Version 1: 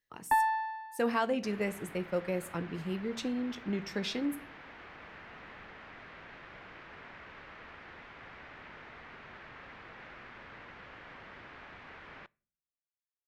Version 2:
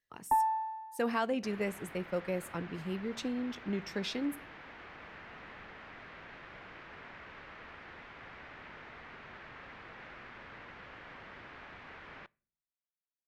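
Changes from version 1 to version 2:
speech: send -7.5 dB; first sound: add Savitzky-Golay filter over 65 samples

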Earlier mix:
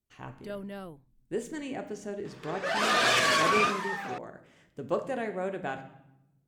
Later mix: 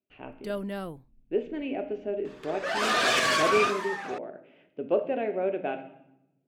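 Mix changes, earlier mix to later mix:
speech: add cabinet simulation 210–3000 Hz, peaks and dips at 270 Hz +6 dB, 400 Hz +6 dB, 620 Hz +8 dB, 1.1 kHz -8 dB, 1.8 kHz -6 dB, 2.6 kHz +8 dB; first sound +6.0 dB

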